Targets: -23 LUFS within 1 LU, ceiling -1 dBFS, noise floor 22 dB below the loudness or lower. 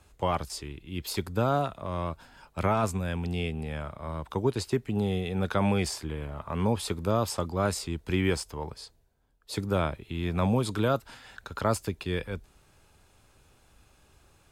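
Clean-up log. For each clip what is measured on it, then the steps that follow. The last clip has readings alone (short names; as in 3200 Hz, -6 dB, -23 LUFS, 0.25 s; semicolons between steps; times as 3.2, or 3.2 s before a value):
loudness -30.0 LUFS; peak -14.5 dBFS; loudness target -23.0 LUFS
-> gain +7 dB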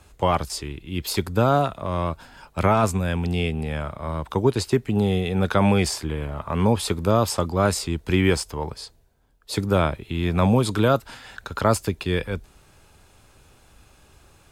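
loudness -23.5 LUFS; peak -7.5 dBFS; noise floor -56 dBFS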